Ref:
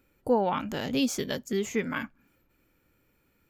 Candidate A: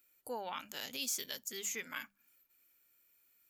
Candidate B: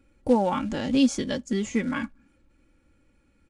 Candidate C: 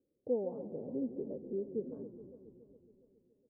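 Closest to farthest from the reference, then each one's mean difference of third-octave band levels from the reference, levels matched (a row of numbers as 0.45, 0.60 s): B, A, C; 4.0, 9.0, 14.0 dB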